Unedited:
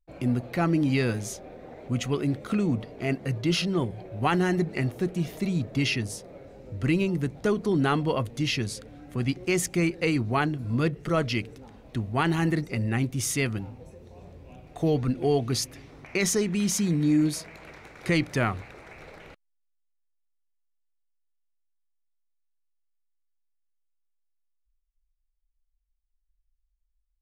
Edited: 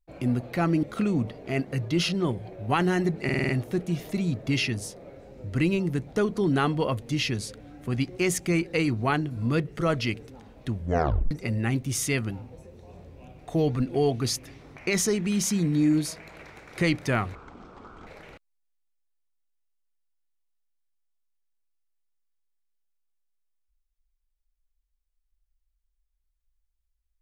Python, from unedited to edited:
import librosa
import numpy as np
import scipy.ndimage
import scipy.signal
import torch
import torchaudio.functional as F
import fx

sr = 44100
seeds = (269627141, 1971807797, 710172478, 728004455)

y = fx.edit(x, sr, fx.cut(start_s=0.83, length_s=1.53),
    fx.stutter(start_s=4.77, slice_s=0.05, count=6),
    fx.tape_stop(start_s=12.01, length_s=0.58),
    fx.speed_span(start_s=18.63, length_s=0.41, speed=0.57), tone=tone)